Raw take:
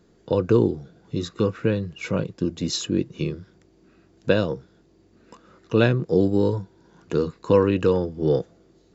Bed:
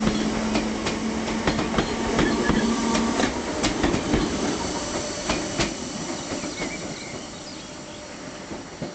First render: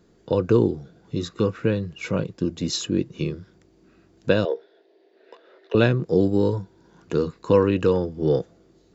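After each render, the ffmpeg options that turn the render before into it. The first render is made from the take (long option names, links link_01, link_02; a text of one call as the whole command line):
ffmpeg -i in.wav -filter_complex "[0:a]asettb=1/sr,asplit=3[link_01][link_02][link_03];[link_01]atrim=end=4.454[link_04];[link_02]atrim=start=4.45:end=5.75,asetpts=PTS-STARTPTS,afade=type=in:duration=0.004:curve=qsin,afade=type=out:start_time=1.296:duration=0.004:curve=qsin,highpass=frequency=390:width=0.5412,highpass=frequency=390:width=1.3066,equalizer=frequency=410:width_type=q:width=4:gain=9,equalizer=frequency=650:width_type=q:width=4:gain=8,equalizer=frequency=1200:width_type=q:width=4:gain=-9,equalizer=frequency=1800:width_type=q:width=4:gain=6,equalizer=frequency=3600:width_type=q:width=4:gain=5,lowpass=frequency=4400:width=0.5412,lowpass=frequency=4400:width=1.3066[link_05];[link_03]atrim=start=5.746[link_06];[link_04][link_05]acrossfade=duration=0.004:curve1=hsin:curve2=qsin[link_07];[link_07][link_06]acrossfade=duration=0.004:curve1=qsin:curve2=hsin" out.wav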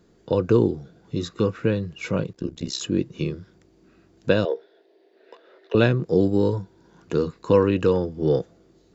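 ffmpeg -i in.wav -filter_complex "[0:a]asettb=1/sr,asplit=3[link_01][link_02][link_03];[link_01]atrim=end=2.334[link_04];[link_02]atrim=start=2.33:end=2.81,asetpts=PTS-STARTPTS,afade=type=in:duration=0.004:curve=qsin,afade=type=out:start_time=0.476:duration=0.004:curve=qsin,tremolo=f=64:d=0.919[link_05];[link_03]atrim=start=2.806[link_06];[link_04][link_05]acrossfade=duration=0.004:curve1=hsin:curve2=qsin[link_07];[link_07][link_06]acrossfade=duration=0.004:curve1=qsin:curve2=hsin" out.wav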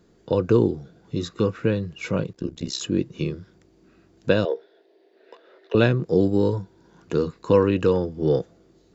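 ffmpeg -i in.wav -af anull out.wav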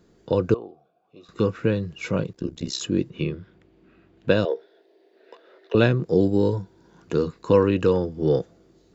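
ffmpeg -i in.wav -filter_complex "[0:a]asettb=1/sr,asplit=3[link_01][link_02][link_03];[link_01]atrim=end=0.544[link_04];[link_02]atrim=start=0.54:end=1.29,asetpts=PTS-STARTPTS,afade=type=in:duration=0.004:curve=qsin,afade=type=out:start_time=0.746:duration=0.004:curve=qsin,asplit=3[link_05][link_06][link_07];[link_05]bandpass=frequency=730:width_type=q:width=8,volume=0dB[link_08];[link_06]bandpass=frequency=1090:width_type=q:width=8,volume=-6dB[link_09];[link_07]bandpass=frequency=2440:width_type=q:width=8,volume=-9dB[link_10];[link_08][link_09][link_10]amix=inputs=3:normalize=0[link_11];[link_03]atrim=start=1.286[link_12];[link_04][link_11]acrossfade=duration=0.004:curve1=hsin:curve2=qsin[link_13];[link_13][link_12]acrossfade=duration=0.004:curve1=qsin:curve2=hsin,asettb=1/sr,asplit=3[link_14][link_15][link_16];[link_14]atrim=end=3.104[link_17];[link_15]atrim=start=3.1:end=4.3,asetpts=PTS-STARTPTS,afade=type=in:duration=0.004:curve=qsin,afade=type=out:start_time=1.196:duration=0.004:curve=qsin,highshelf=frequency=4200:width_type=q:width=1.5:gain=-11[link_18];[link_16]atrim=start=4.296[link_19];[link_17][link_18]acrossfade=duration=0.004:curve1=hsin:curve2=qsin[link_20];[link_20][link_19]acrossfade=duration=0.004:curve1=qsin:curve2=hsin,asettb=1/sr,asplit=3[link_21][link_22][link_23];[link_21]atrim=end=6.144[link_24];[link_22]atrim=start=6.14:end=6.61,asetpts=PTS-STARTPTS,afade=type=in:duration=0.004:curve=qsin,afade=type=out:start_time=0.466:duration=0.004:curve=qsin,equalizer=frequency=1200:width_type=o:width=0.21:gain=-6.5[link_25];[link_23]atrim=start=6.606[link_26];[link_24][link_25]acrossfade=duration=0.004:curve1=hsin:curve2=qsin[link_27];[link_27][link_26]acrossfade=duration=0.004:curve1=qsin:curve2=hsin" out.wav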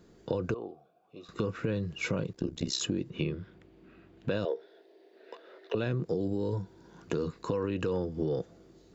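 ffmpeg -i in.wav -af "alimiter=limit=-15.5dB:level=0:latency=1:release=42,acompressor=threshold=-27dB:ratio=6" out.wav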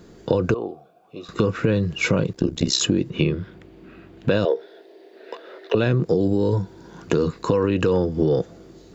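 ffmpeg -i in.wav -af "volume=11.5dB" out.wav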